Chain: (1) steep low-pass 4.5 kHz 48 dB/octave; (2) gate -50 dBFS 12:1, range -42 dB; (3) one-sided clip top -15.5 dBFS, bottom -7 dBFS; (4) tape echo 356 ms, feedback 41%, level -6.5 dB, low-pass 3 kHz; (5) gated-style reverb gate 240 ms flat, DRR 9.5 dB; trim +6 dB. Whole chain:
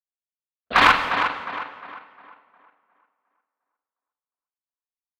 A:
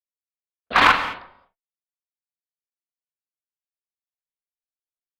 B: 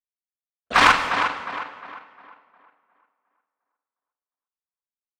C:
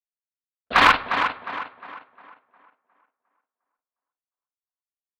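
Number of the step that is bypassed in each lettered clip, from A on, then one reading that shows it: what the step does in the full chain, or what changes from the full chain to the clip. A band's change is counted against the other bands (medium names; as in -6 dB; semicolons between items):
4, loudness change +2.5 LU; 1, 8 kHz band +7.0 dB; 5, echo-to-direct -6.5 dB to -10.0 dB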